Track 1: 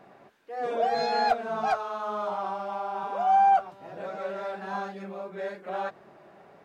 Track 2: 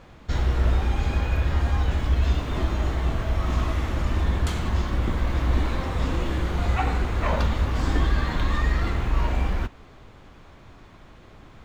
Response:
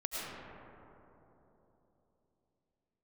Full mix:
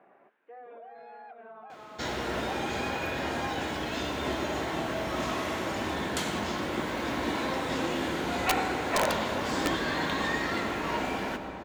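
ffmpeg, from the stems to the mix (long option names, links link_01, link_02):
-filter_complex "[0:a]alimiter=limit=-24dB:level=0:latency=1:release=65,lowpass=frequency=2500:width=0.5412,lowpass=frequency=2500:width=1.3066,acompressor=threshold=-39dB:ratio=6,volume=-6dB[link_01];[1:a]bandreject=frequency=1200:width=9.2,adelay=1700,volume=-1.5dB,asplit=2[link_02][link_03];[link_03]volume=-7.5dB[link_04];[2:a]atrim=start_sample=2205[link_05];[link_04][link_05]afir=irnorm=-1:irlink=0[link_06];[link_01][link_02][link_06]amix=inputs=3:normalize=0,highpass=260,highshelf=frequency=4600:gain=3.5,aeval=exprs='(mod(6.68*val(0)+1,2)-1)/6.68':channel_layout=same"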